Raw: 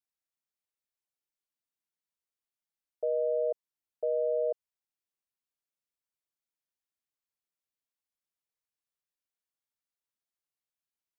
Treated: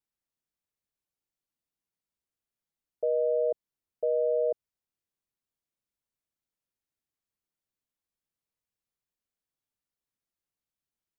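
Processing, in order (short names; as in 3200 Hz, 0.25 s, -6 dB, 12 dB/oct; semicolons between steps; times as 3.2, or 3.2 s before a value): low shelf 430 Hz +10.5 dB; gain -1.5 dB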